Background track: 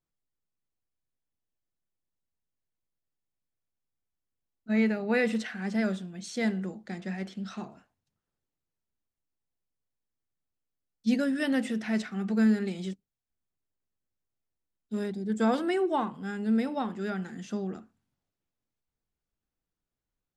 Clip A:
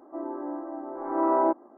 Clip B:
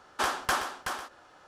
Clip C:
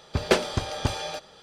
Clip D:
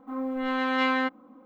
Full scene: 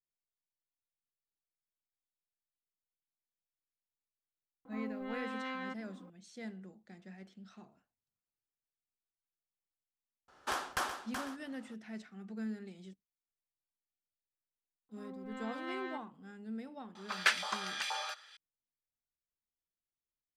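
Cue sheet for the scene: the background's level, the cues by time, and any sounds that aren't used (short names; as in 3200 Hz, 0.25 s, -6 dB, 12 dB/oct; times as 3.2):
background track -16.5 dB
4.65 add D -4 dB + compressor 2.5:1, threshold -40 dBFS
10.28 add B -7.5 dB
14.89 add D -17.5 dB
16.95 add C -6 dB + LFO high-pass saw up 2.1 Hz 890–2100 Hz
not used: A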